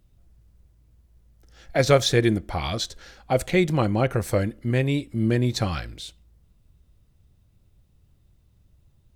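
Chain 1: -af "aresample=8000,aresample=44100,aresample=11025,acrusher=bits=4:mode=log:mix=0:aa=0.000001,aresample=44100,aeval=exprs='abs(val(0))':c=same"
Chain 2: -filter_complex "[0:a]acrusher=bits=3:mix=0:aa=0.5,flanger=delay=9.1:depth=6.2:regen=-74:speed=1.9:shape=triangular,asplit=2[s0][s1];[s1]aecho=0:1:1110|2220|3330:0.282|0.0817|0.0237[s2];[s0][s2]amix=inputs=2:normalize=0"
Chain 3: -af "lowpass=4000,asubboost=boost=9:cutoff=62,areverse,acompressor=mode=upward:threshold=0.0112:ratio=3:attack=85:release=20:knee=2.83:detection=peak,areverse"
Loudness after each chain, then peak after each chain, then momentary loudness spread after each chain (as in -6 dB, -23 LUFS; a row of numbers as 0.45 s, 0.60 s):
-27.5 LUFS, -28.0 LUFS, -24.0 LUFS; -4.0 dBFS, -7.5 dBFS, -3.5 dBFS; 11 LU, 15 LU, 23 LU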